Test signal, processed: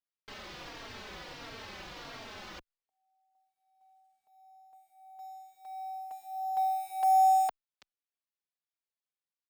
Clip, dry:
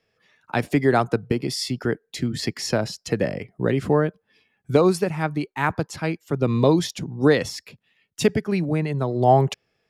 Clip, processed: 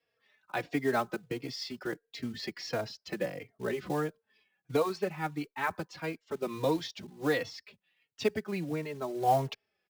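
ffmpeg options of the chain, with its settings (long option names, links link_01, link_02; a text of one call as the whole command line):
ffmpeg -i in.wav -filter_complex "[0:a]lowpass=frequency=5100:width=0.5412,lowpass=frequency=5100:width=1.3066,lowshelf=frequency=220:gain=-12,acrossover=split=370|3000[link_01][link_02][link_03];[link_01]acompressor=threshold=-23dB:ratio=6[link_04];[link_04][link_02][link_03]amix=inputs=3:normalize=0,acrusher=bits=5:mode=log:mix=0:aa=0.000001,asplit=2[link_05][link_06];[link_06]adelay=3.7,afreqshift=-1.5[link_07];[link_05][link_07]amix=inputs=2:normalize=1,volume=-5dB" out.wav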